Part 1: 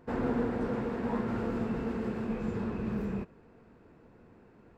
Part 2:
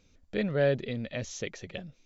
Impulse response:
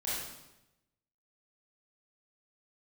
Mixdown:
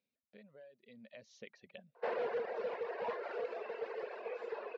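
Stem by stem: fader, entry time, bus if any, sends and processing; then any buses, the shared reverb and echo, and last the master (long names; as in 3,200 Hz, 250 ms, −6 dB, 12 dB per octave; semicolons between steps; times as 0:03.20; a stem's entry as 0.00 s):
+3.0 dB, 1.95 s, no send, Butterworth high-pass 410 Hz 48 dB per octave; hard clipping −33.5 dBFS, distortion −15 dB
0:00.66 −20 dB → 0:01.44 −10 dB, 0.00 s, no send, low-shelf EQ 280 Hz −8.5 dB; downward compressor 6 to 1, threshold −35 dBFS, peak gain reduction 11.5 dB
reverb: not used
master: reverb reduction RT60 1.9 s; loudspeaker in its box 180–4,500 Hz, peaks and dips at 220 Hz +7 dB, 320 Hz −8 dB, 590 Hz +4 dB, 840 Hz −3 dB, 1,300 Hz −7 dB, 3,400 Hz −4 dB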